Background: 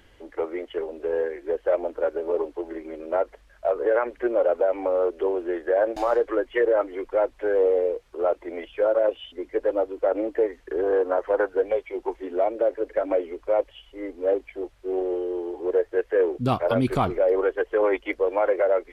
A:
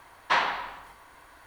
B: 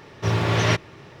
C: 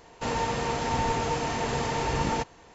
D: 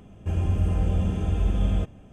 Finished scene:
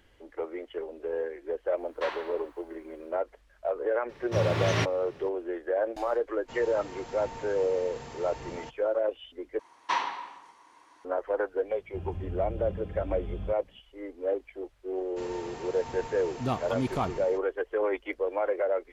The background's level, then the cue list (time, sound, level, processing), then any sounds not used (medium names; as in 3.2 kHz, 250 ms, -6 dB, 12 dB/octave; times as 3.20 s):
background -6.5 dB
1.71 s: add A -12.5 dB, fades 0.10 s
4.09 s: add B -7 dB
6.27 s: add C -15 dB
9.59 s: replace with A -6.5 dB + cabinet simulation 210–9400 Hz, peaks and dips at 320 Hz +6 dB, 640 Hz -6 dB, 960 Hz +7 dB, 1.5 kHz -6 dB, 5.9 kHz +8 dB
11.68 s: add D -13.5 dB + resampled via 8 kHz
14.95 s: add C -13.5 dB + fade out at the end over 0.69 s